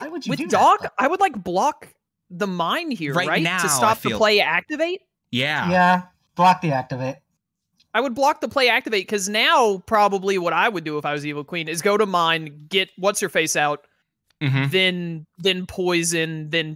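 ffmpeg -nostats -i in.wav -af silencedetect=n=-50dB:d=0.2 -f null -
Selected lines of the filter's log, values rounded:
silence_start: 1.92
silence_end: 2.30 | silence_duration: 0.39
silence_start: 4.98
silence_end: 5.32 | silence_duration: 0.34
silence_start: 6.10
silence_end: 6.37 | silence_duration: 0.26
silence_start: 7.18
silence_end: 7.80 | silence_duration: 0.62
silence_start: 13.86
silence_end: 14.31 | silence_duration: 0.45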